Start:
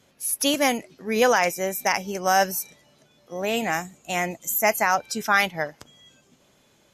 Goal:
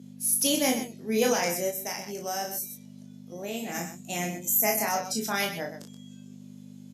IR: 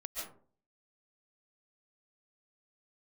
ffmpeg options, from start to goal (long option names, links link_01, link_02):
-filter_complex "[0:a]asplit=2[link_01][link_02];[link_02]adelay=23,volume=-5dB[link_03];[link_01][link_03]amix=inputs=2:normalize=0,aecho=1:1:34.99|128.3:0.562|0.316,aeval=exprs='val(0)+0.0282*(sin(2*PI*50*n/s)+sin(2*PI*2*50*n/s)/2+sin(2*PI*3*50*n/s)/3+sin(2*PI*4*50*n/s)/4+sin(2*PI*5*50*n/s)/5)':channel_layout=same,highpass=frequency=190:width=0.5412,highpass=frequency=190:width=1.3066,equalizer=frequency=1300:width=0.51:gain=-14,asplit=3[link_04][link_05][link_06];[link_04]afade=type=out:start_time=1.7:duration=0.02[link_07];[link_05]acompressor=threshold=-40dB:ratio=1.5,afade=type=in:start_time=1.7:duration=0.02,afade=type=out:start_time=3.74:duration=0.02[link_08];[link_06]afade=type=in:start_time=3.74:duration=0.02[link_09];[link_07][link_08][link_09]amix=inputs=3:normalize=0"